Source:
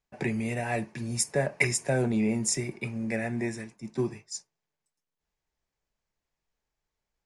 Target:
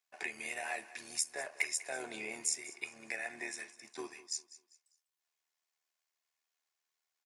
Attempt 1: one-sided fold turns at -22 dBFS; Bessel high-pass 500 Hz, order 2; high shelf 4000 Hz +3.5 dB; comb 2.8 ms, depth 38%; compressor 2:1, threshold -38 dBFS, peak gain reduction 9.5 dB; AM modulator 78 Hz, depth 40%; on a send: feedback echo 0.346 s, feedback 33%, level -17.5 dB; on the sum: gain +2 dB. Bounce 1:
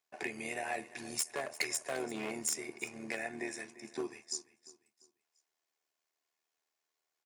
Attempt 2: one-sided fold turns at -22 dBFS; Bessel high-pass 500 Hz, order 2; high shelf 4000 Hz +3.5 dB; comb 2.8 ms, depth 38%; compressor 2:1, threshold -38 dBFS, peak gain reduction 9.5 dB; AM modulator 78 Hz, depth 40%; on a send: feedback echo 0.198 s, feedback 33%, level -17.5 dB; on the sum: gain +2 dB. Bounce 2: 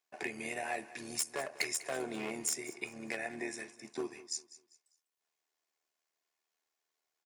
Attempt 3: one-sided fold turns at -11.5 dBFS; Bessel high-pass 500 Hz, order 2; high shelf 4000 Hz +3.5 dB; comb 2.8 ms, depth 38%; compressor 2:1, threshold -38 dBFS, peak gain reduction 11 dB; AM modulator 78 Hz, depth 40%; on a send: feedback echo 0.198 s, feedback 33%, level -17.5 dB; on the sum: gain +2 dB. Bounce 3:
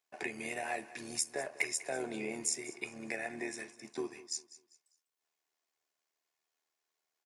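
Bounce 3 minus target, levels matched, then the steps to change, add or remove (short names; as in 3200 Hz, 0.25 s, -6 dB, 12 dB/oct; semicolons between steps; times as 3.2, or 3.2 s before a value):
500 Hz band +5.5 dB
change: Bessel high-pass 1100 Hz, order 2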